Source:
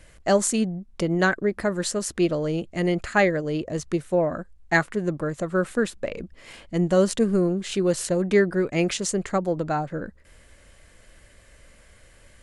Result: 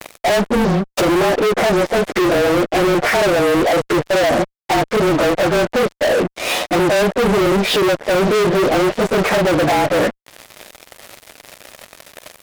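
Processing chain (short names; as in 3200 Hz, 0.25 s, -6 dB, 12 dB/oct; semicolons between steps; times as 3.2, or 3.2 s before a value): inharmonic rescaling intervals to 108%; HPF 300 Hz 12 dB/oct; bell 670 Hz +7.5 dB 1.3 oct; in parallel at -3 dB: negative-ratio compressor -30 dBFS, ratio -1; on the sum: treble ducked by the level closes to 520 Hz, closed at -17.5 dBFS; fuzz box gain 38 dB, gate -45 dBFS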